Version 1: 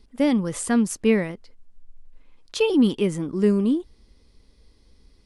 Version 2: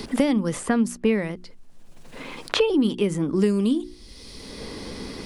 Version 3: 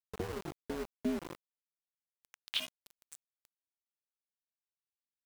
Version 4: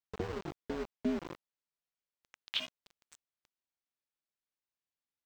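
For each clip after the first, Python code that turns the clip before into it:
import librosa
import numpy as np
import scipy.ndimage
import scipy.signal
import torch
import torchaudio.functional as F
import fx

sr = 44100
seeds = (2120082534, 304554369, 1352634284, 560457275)

y1 = fx.hum_notches(x, sr, base_hz=60, count=6)
y1 = fx.band_squash(y1, sr, depth_pct=100)
y2 = y1 * np.sin(2.0 * np.pi * 190.0 * np.arange(len(y1)) / sr)
y2 = fx.filter_sweep_bandpass(y2, sr, from_hz=220.0, to_hz=7500.0, start_s=1.12, end_s=3.05, q=2.3)
y2 = np.where(np.abs(y2) >= 10.0 ** (-35.0 / 20.0), y2, 0.0)
y2 = F.gain(torch.from_numpy(y2), -3.0).numpy()
y3 = scipy.signal.lfilter(np.full(4, 1.0 / 4), 1.0, y2)
y3 = F.gain(torch.from_numpy(y3), 1.0).numpy()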